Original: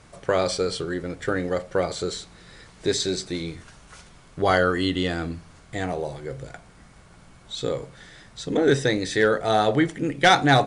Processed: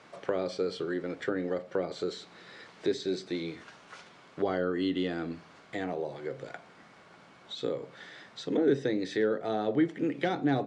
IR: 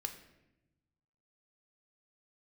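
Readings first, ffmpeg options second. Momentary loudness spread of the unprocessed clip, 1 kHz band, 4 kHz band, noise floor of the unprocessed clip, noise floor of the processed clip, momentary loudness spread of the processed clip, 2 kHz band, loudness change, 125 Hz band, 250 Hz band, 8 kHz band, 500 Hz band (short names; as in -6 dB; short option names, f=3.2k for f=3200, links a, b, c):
16 LU, -14.0 dB, -13.5 dB, -51 dBFS, -56 dBFS, 19 LU, -14.0 dB, -8.5 dB, -11.5 dB, -4.5 dB, -19.0 dB, -7.0 dB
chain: -filter_complex "[0:a]acrossover=split=390[a][b];[b]acompressor=threshold=-36dB:ratio=5[c];[a][c]amix=inputs=2:normalize=0,highpass=270,lowpass=4.2k"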